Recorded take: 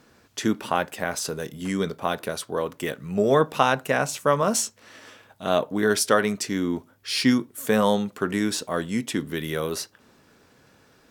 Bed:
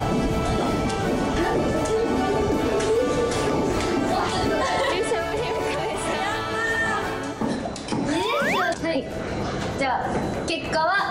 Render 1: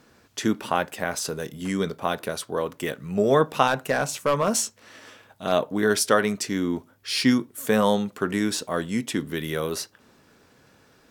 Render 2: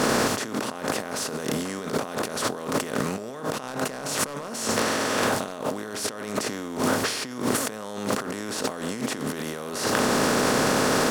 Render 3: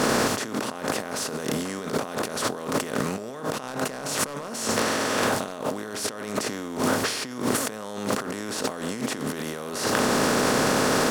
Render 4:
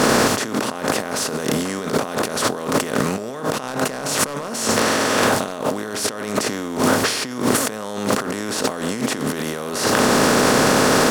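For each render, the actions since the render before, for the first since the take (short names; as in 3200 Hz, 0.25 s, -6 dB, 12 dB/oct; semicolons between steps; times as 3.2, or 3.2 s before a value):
3.67–5.52 overloaded stage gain 14.5 dB
per-bin compression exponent 0.4; negative-ratio compressor -29 dBFS, ratio -1
nothing audible
gain +6.5 dB; limiter -2 dBFS, peak gain reduction 1.5 dB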